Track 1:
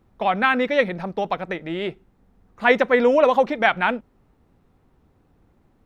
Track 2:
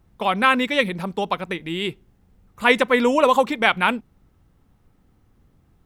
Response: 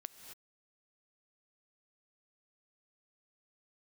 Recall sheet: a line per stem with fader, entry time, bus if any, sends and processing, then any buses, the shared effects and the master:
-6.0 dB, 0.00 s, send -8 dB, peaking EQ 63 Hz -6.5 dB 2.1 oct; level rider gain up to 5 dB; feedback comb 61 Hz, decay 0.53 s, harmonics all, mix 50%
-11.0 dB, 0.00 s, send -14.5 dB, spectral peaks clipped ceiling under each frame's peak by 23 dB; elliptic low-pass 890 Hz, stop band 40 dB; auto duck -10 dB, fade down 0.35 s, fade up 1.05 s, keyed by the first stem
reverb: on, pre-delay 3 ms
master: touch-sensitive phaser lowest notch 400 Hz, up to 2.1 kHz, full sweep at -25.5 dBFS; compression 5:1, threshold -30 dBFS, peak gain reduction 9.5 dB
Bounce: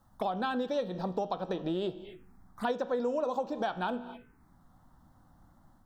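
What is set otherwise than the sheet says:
stem 1 -6.0 dB -> +1.5 dB; stem 2: missing elliptic low-pass 890 Hz, stop band 40 dB

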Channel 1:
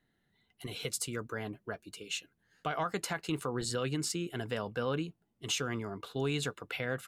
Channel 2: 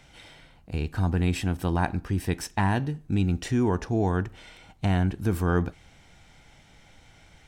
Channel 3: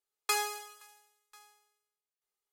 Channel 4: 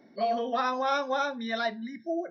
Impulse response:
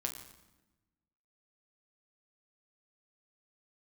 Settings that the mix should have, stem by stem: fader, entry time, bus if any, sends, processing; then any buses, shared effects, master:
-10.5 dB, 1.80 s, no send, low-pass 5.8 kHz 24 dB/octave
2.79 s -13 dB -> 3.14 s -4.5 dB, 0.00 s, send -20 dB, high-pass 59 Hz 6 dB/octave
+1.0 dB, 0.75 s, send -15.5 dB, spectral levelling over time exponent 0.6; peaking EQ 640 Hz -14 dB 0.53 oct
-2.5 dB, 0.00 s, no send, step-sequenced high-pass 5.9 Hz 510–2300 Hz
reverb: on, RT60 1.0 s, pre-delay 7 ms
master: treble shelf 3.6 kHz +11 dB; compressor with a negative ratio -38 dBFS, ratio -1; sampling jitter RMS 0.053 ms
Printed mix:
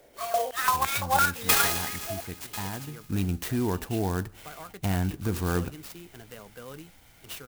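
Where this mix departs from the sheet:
stem 2: missing high-pass 59 Hz 6 dB/octave; stem 3: entry 0.75 s -> 1.20 s; master: missing compressor with a negative ratio -38 dBFS, ratio -1

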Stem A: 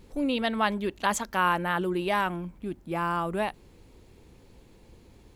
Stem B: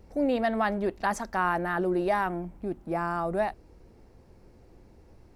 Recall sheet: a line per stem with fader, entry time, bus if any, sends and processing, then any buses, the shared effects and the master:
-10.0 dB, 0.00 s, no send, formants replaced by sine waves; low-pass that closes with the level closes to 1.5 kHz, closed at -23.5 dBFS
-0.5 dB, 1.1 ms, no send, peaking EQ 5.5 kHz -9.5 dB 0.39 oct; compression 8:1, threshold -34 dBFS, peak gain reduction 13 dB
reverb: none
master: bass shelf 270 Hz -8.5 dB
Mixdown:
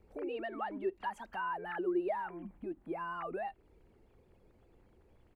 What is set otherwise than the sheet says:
stem B -0.5 dB -> -11.0 dB; master: missing bass shelf 270 Hz -8.5 dB

